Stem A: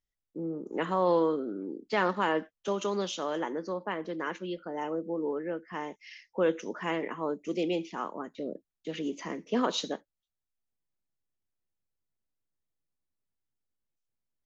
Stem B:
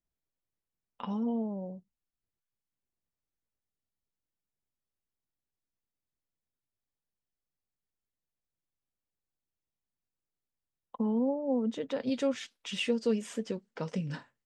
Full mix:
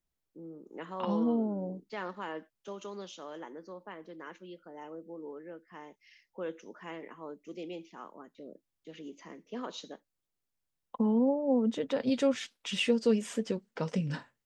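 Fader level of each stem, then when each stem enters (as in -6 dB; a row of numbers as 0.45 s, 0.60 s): -11.5 dB, +2.5 dB; 0.00 s, 0.00 s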